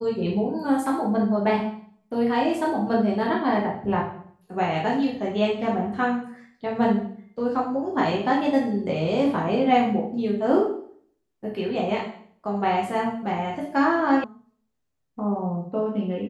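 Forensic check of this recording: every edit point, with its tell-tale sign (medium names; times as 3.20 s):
14.24 s: sound stops dead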